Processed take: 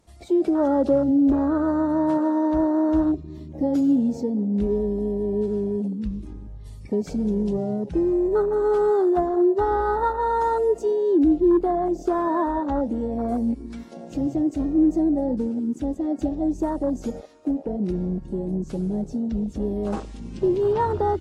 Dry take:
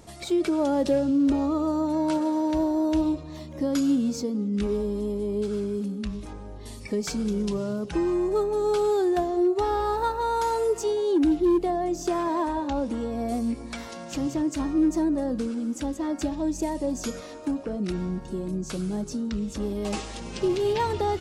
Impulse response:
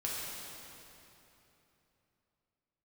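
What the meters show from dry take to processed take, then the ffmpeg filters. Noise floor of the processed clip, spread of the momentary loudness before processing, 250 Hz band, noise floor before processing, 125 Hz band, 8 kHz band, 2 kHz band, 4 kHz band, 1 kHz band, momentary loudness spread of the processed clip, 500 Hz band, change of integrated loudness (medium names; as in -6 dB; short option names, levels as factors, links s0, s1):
-40 dBFS, 9 LU, +3.5 dB, -40 dBFS, +3.5 dB, under -10 dB, 0.0 dB, under -10 dB, +3.0 dB, 9 LU, +3.5 dB, +3.5 dB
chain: -af "afwtdn=0.0355,volume=1.5" -ar 44100 -c:a aac -b:a 48k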